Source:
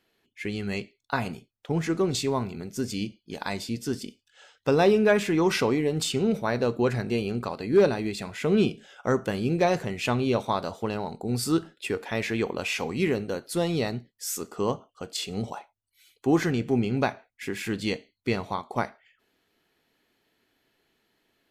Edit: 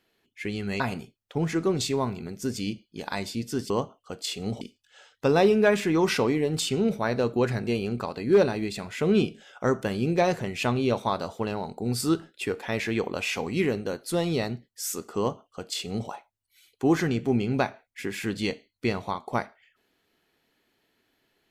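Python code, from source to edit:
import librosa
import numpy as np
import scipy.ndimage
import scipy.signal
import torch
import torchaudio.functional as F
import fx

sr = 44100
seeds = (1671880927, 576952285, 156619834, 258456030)

y = fx.edit(x, sr, fx.cut(start_s=0.8, length_s=0.34),
    fx.duplicate(start_s=14.61, length_s=0.91, to_s=4.04), tone=tone)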